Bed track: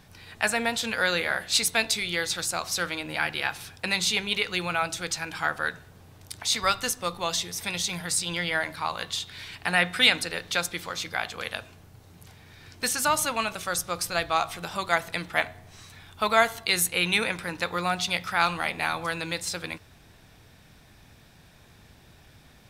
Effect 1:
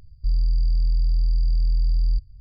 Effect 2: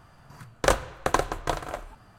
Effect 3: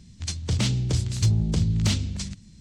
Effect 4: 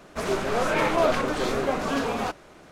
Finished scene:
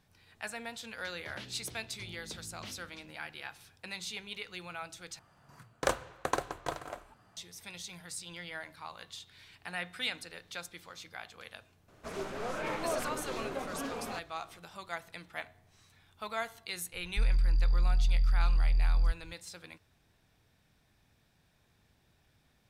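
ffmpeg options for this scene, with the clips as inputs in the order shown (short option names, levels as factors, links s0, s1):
-filter_complex "[0:a]volume=0.168[s0];[3:a]acrossover=split=290 4000:gain=0.141 1 0.0891[s1][s2][s3];[s1][s2][s3]amix=inputs=3:normalize=0[s4];[2:a]highpass=f=120:p=1[s5];[s0]asplit=2[s6][s7];[s6]atrim=end=5.194[s8];[s5]atrim=end=2.18,asetpts=PTS-STARTPTS,volume=0.398[s9];[s7]atrim=start=7.366[s10];[s4]atrim=end=2.6,asetpts=PTS-STARTPTS,volume=0.2,afade=t=in:d=0.004:c=hsin,afade=t=out:st=2.596:d=0.004:c=hsin,adelay=770[s11];[4:a]atrim=end=2.71,asetpts=PTS-STARTPTS,volume=0.237,afade=t=in:d=0.004:c=hsin,afade=t=out:st=2.706:d=0.004:c=hsin,adelay=11880[s12];[1:a]atrim=end=2.4,asetpts=PTS-STARTPTS,volume=0.501,afade=t=in:d=0.004:c=hsin,afade=t=out:st=2.396:d=0.004:c=hsin,adelay=16930[s13];[s8][s9]acrossfade=d=0.004:c1=hsin:c2=hsin[s14];[s14][s10]acrossfade=d=0.004:c1=hsin:c2=hsin[s15];[s15][s11][s12][s13]amix=inputs=4:normalize=0"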